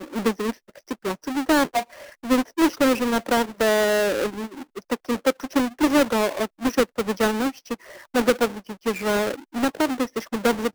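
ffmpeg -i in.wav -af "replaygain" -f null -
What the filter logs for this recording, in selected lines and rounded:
track_gain = +2.4 dB
track_peak = 0.209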